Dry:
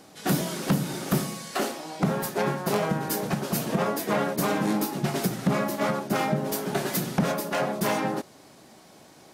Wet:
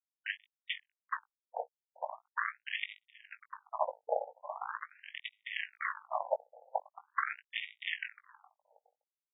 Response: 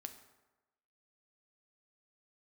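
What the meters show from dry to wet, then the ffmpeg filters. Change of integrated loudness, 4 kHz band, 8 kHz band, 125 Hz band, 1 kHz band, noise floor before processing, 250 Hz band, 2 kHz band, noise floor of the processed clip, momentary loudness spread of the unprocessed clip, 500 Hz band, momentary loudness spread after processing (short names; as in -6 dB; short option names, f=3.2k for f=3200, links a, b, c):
-12.5 dB, -9.0 dB, under -40 dB, under -40 dB, -9.5 dB, -52 dBFS, under -40 dB, -5.5 dB, under -85 dBFS, 3 LU, -13.5 dB, 9 LU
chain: -filter_complex "[0:a]bass=f=250:g=-4,treble=f=4k:g=-5,areverse,acompressor=mode=upward:threshold=-29dB:ratio=2.5,areverse,afftfilt=real='hypot(re,im)*cos(2*PI*random(0))':imag='hypot(re,im)*sin(2*PI*random(1))':win_size=512:overlap=0.75,aresample=11025,acrusher=bits=3:mix=0:aa=0.5,aresample=44100,asplit=2[a][b];[b]adelay=19,volume=-9dB[c];[a][c]amix=inputs=2:normalize=0,aecho=1:1:416|832:0.075|0.027,afftfilt=real='re*between(b*sr/1024,610*pow(2700/610,0.5+0.5*sin(2*PI*0.42*pts/sr))/1.41,610*pow(2700/610,0.5+0.5*sin(2*PI*0.42*pts/sr))*1.41)':imag='im*between(b*sr/1024,610*pow(2700/610,0.5+0.5*sin(2*PI*0.42*pts/sr))/1.41,610*pow(2700/610,0.5+0.5*sin(2*PI*0.42*pts/sr))*1.41)':win_size=1024:overlap=0.75,volume=8dB"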